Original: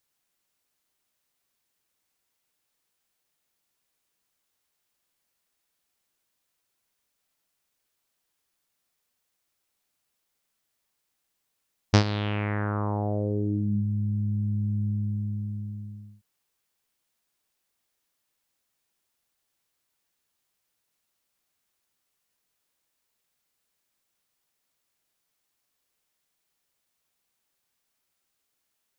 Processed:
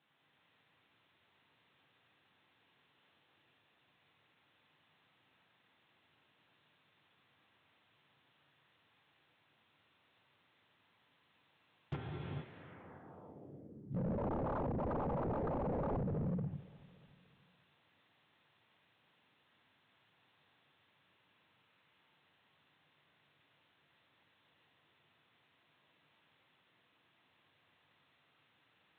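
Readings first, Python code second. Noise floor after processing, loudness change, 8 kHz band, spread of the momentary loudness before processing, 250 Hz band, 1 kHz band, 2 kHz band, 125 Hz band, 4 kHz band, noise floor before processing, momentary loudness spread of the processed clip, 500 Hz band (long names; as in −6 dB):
−74 dBFS, −11.0 dB, can't be measured, 11 LU, −10.5 dB, −6.0 dB, −16.5 dB, −14.5 dB, −21.5 dB, −79 dBFS, 18 LU, −5.5 dB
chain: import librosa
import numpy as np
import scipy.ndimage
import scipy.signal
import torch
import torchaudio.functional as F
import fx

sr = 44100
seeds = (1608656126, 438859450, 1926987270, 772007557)

p1 = fx.gate_flip(x, sr, shuts_db=-20.0, range_db=-38)
p2 = fx.low_shelf(p1, sr, hz=180.0, db=-2.5)
p3 = fx.lpc_vocoder(p2, sr, seeds[0], excitation='whisper', order=8)
p4 = fx.air_absorb(p3, sr, metres=77.0)
p5 = fx.over_compress(p4, sr, threshold_db=-38.0, ratio=-1.0)
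p6 = p4 + (p5 * librosa.db_to_amplitude(-1.5))
p7 = scipy.signal.sosfilt(scipy.signal.butter(4, 110.0, 'highpass', fs=sr, output='sos'), p6)
p8 = fx.rev_gated(p7, sr, seeds[1], gate_ms=490, shape='flat', drr_db=-4.0)
p9 = 10.0 ** (-32.0 / 20.0) * (np.abs((p8 / 10.0 ** (-32.0 / 20.0) + 3.0) % 4.0 - 2.0) - 1.0)
p10 = fx.env_lowpass_down(p9, sr, base_hz=1600.0, full_db=-34.5)
y = p10 + fx.echo_feedback(p10, sr, ms=289, feedback_pct=55, wet_db=-21.5, dry=0)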